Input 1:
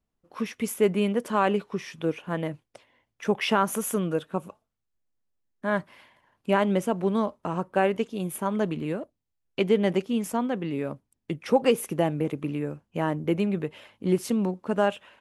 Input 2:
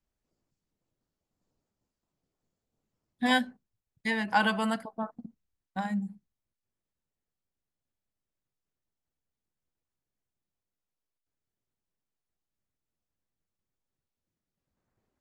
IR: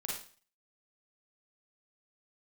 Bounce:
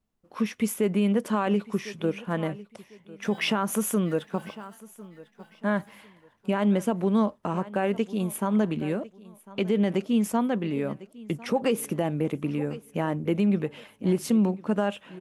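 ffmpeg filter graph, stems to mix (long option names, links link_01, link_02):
-filter_complex "[0:a]equalizer=frequency=210:width=6.4:gain=6,volume=1dB,asplit=2[link_01][link_02];[link_02]volume=-21dB[link_03];[1:a]lowshelf=frequency=480:gain=-10.5,flanger=delay=22.5:depth=5:speed=0.47,acrusher=bits=4:mode=log:mix=0:aa=0.000001,volume=-20dB,asplit=3[link_04][link_05][link_06];[link_05]volume=-8dB[link_07];[link_06]volume=-9dB[link_08];[2:a]atrim=start_sample=2205[link_09];[link_07][link_09]afir=irnorm=-1:irlink=0[link_10];[link_03][link_08]amix=inputs=2:normalize=0,aecho=0:1:1050|2100|3150|4200:1|0.29|0.0841|0.0244[link_11];[link_01][link_04][link_10][link_11]amix=inputs=4:normalize=0,alimiter=limit=-15dB:level=0:latency=1:release=81"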